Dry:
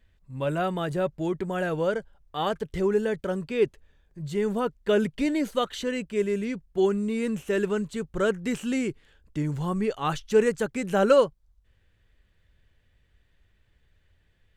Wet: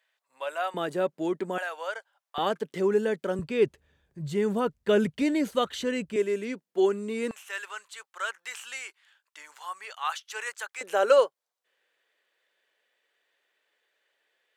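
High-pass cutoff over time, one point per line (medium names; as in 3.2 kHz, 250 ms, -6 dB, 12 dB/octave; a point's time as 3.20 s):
high-pass 24 dB/octave
640 Hz
from 0.74 s 220 Hz
from 1.58 s 730 Hz
from 2.38 s 200 Hz
from 3.39 s 65 Hz
from 6.16 s 260 Hz
from 7.31 s 910 Hz
from 10.81 s 440 Hz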